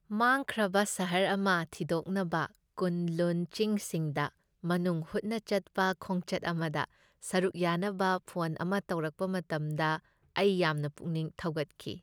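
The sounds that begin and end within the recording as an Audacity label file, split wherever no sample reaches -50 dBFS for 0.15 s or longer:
2.780000	4.290000	sound
4.630000	6.850000	sound
7.220000	9.990000	sound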